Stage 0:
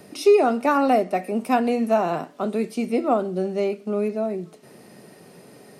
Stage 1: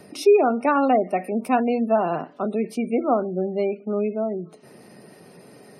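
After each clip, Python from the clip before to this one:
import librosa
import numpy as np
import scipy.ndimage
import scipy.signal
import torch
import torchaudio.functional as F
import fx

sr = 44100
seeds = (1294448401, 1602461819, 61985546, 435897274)

y = fx.spec_gate(x, sr, threshold_db=-30, keep='strong')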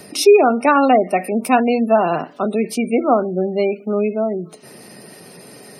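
y = fx.high_shelf(x, sr, hz=2400.0, db=9.5)
y = y * librosa.db_to_amplitude(5.0)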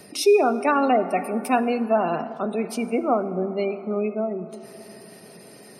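y = fx.rev_plate(x, sr, seeds[0], rt60_s=4.0, hf_ratio=0.3, predelay_ms=0, drr_db=12.5)
y = y * librosa.db_to_amplitude(-6.5)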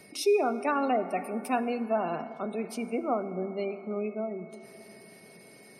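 y = x + 10.0 ** (-50.0 / 20.0) * np.sin(2.0 * np.pi * 2200.0 * np.arange(len(x)) / sr)
y = y * librosa.db_to_amplitude(-7.5)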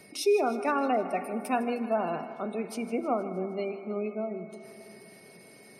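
y = fx.echo_feedback(x, sr, ms=156, feedback_pct=59, wet_db=-15.5)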